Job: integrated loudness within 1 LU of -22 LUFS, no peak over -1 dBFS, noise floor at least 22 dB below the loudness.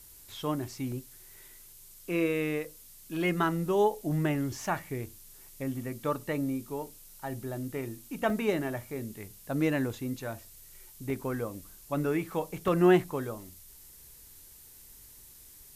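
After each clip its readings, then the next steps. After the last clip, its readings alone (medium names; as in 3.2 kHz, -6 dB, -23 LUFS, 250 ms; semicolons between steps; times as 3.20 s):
dropouts 5; longest dropout 1.1 ms; noise floor -53 dBFS; noise floor target -54 dBFS; loudness -31.5 LUFS; peak level -10.5 dBFS; loudness target -22.0 LUFS
-> interpolate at 0.92/4.35/8.30/11.10/12.68 s, 1.1 ms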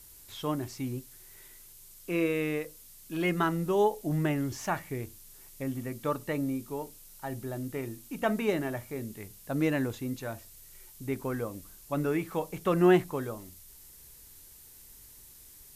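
dropouts 0; noise floor -53 dBFS; noise floor target -54 dBFS
-> noise print and reduce 6 dB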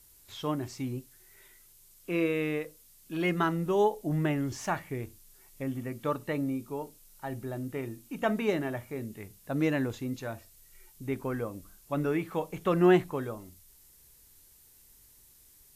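noise floor -59 dBFS; loudness -31.5 LUFS; peak level -11.0 dBFS; loudness target -22.0 LUFS
-> trim +9.5 dB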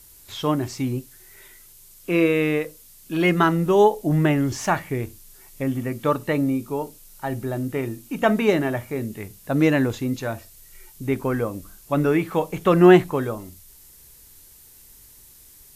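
loudness -22.0 LUFS; peak level -1.5 dBFS; noise floor -49 dBFS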